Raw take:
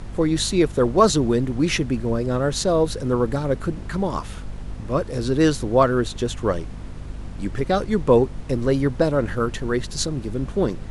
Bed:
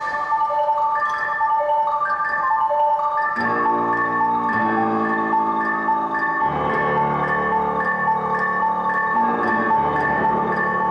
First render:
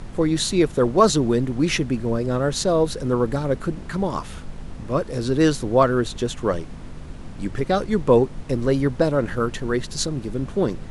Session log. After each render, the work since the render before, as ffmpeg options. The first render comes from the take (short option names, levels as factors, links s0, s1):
-af "bandreject=f=50:t=h:w=6,bandreject=f=100:t=h:w=6"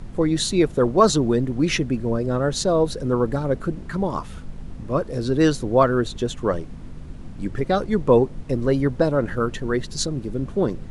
-af "afftdn=nr=6:nf=-37"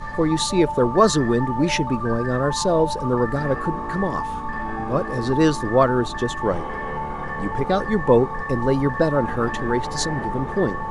-filter_complex "[1:a]volume=0.335[s0];[0:a][s0]amix=inputs=2:normalize=0"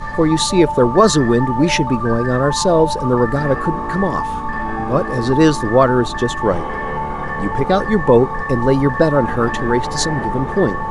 -af "volume=1.88,alimiter=limit=0.891:level=0:latency=1"